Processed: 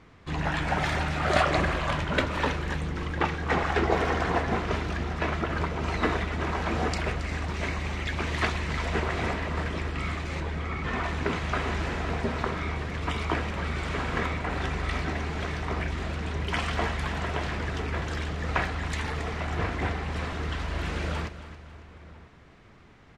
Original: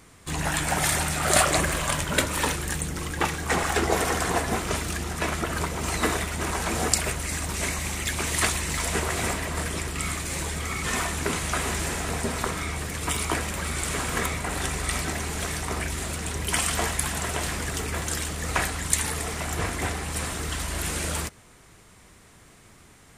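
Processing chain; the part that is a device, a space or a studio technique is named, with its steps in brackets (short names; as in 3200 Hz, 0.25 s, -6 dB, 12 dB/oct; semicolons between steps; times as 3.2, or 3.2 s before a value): shout across a valley (air absorption 230 m; outdoor echo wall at 170 m, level -19 dB); 10.4–11.04 high shelf 3500 Hz -8.5 dB; feedback echo 0.274 s, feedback 44%, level -14 dB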